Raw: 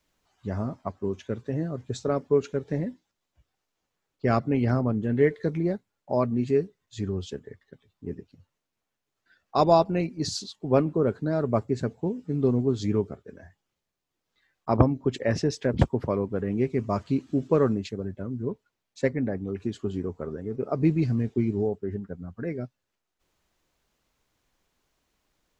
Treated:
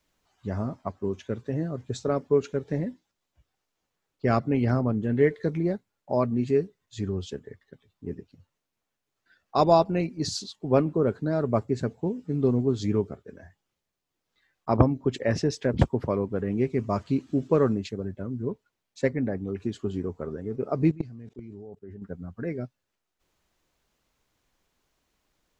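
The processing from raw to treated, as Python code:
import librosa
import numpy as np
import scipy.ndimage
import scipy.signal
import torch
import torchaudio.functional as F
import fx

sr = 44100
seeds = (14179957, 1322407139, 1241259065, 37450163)

y = fx.level_steps(x, sr, step_db=21, at=(20.91, 22.02))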